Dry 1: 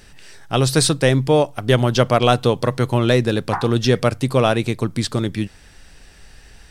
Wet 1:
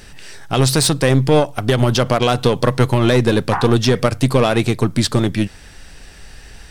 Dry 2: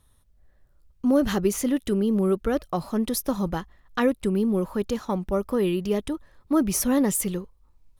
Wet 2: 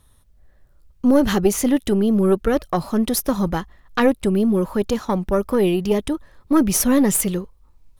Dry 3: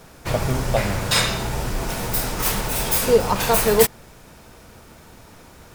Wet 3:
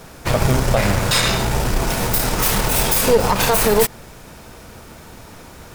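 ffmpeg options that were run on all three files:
-af "aeval=exprs='0.891*(cos(1*acos(clip(val(0)/0.891,-1,1)))-cos(1*PI/2))+0.0794*(cos(6*acos(clip(val(0)/0.891,-1,1)))-cos(6*PI/2))':c=same,alimiter=limit=-10dB:level=0:latency=1:release=70,volume=6dB"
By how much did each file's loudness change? +2.0, +5.5, +3.5 LU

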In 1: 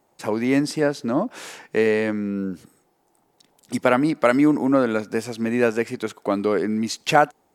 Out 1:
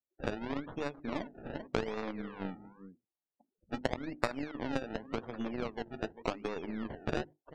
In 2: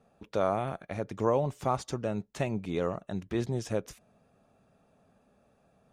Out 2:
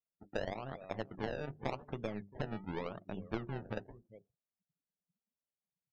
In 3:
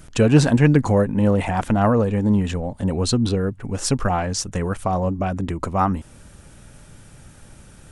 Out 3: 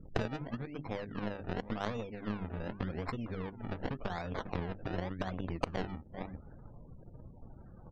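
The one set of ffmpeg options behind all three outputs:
-af "aecho=1:1:393:0.119,acrusher=samples=28:mix=1:aa=0.000001:lfo=1:lforange=28:lforate=0.88,acompressor=threshold=-31dB:ratio=16,bandreject=f=50:t=h:w=6,bandreject=f=100:t=h:w=6,bandreject=f=150:t=h:w=6,bandreject=f=200:t=h:w=6,bandreject=f=250:t=h:w=6,bandreject=f=300:t=h:w=6,bandreject=f=350:t=h:w=6,bandreject=f=400:t=h:w=6,aeval=exprs='0.211*(cos(1*acos(clip(val(0)/0.211,-1,1)))-cos(1*PI/2))+0.00841*(cos(3*acos(clip(val(0)/0.211,-1,1)))-cos(3*PI/2))+0.0188*(cos(6*acos(clip(val(0)/0.211,-1,1)))-cos(6*PI/2))+0.0188*(cos(7*acos(clip(val(0)/0.211,-1,1)))-cos(7*PI/2))+0.00473*(cos(8*acos(clip(val(0)/0.211,-1,1)))-cos(8*PI/2))':c=same,aemphasis=mode=reproduction:type=50fm,afftdn=nr=35:nf=-59,adynamicequalizer=threshold=0.00398:dfrequency=2700:dqfactor=0.7:tfrequency=2700:tqfactor=0.7:attack=5:release=100:ratio=0.375:range=1.5:mode=boostabove:tftype=highshelf,volume=5.5dB"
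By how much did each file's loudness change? -17.0, -10.0, -19.5 LU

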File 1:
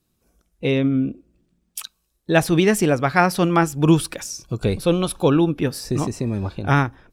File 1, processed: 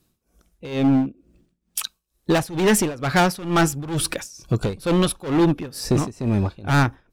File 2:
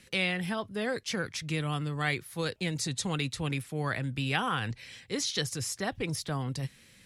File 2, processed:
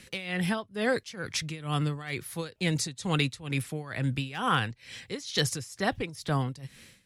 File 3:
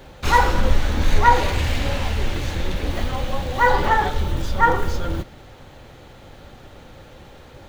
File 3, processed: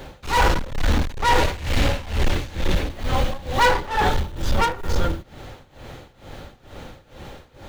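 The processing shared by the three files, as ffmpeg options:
-af "volume=18.5dB,asoftclip=hard,volume=-18.5dB,tremolo=f=2.2:d=0.88,volume=6dB"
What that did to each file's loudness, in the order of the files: -2.0, +1.5, -1.5 LU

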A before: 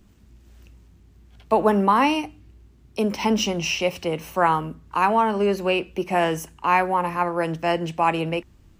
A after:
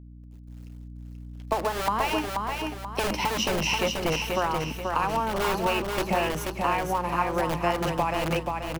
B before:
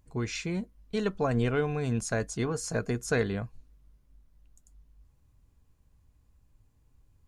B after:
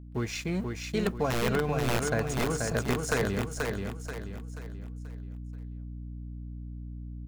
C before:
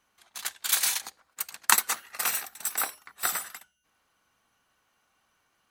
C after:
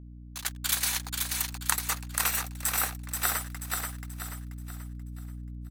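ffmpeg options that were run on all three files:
-filter_complex "[0:a]acrossover=split=420[a][b];[a]aeval=exprs='(mod(14.1*val(0)+1,2)-1)/14.1':c=same[c];[c][b]amix=inputs=2:normalize=0,adynamicequalizer=threshold=0.00708:dfrequency=7200:dqfactor=0.97:tfrequency=7200:tqfactor=0.97:attack=5:release=100:ratio=0.375:range=2:mode=cutabove:tftype=bell,acompressor=threshold=-24dB:ratio=12,aeval=exprs='sgn(val(0))*max(abs(val(0))-0.00447,0)':c=same,agate=range=-33dB:threshold=-60dB:ratio=3:detection=peak,acrusher=bits=10:mix=0:aa=0.000001,aeval=exprs='val(0)+0.00501*(sin(2*PI*60*n/s)+sin(2*PI*2*60*n/s)/2+sin(2*PI*3*60*n/s)/3+sin(2*PI*4*60*n/s)/4+sin(2*PI*5*60*n/s)/5)':c=same,aecho=1:1:483|966|1449|1932|2415:0.631|0.252|0.101|0.0404|0.0162,volume=2dB"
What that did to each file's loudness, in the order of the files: -4.5, -1.5, -2.0 LU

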